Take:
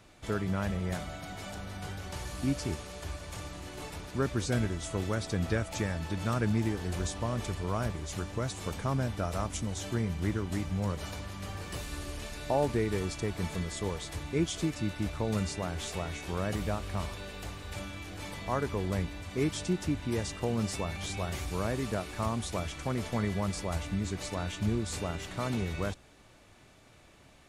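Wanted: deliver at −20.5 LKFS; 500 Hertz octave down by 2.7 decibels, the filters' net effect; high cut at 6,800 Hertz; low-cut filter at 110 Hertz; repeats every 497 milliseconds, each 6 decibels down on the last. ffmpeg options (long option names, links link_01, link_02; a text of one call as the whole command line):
ffmpeg -i in.wav -af "highpass=110,lowpass=6800,equalizer=frequency=500:width_type=o:gain=-3.5,aecho=1:1:497|994|1491|1988|2485|2982:0.501|0.251|0.125|0.0626|0.0313|0.0157,volume=14.5dB" out.wav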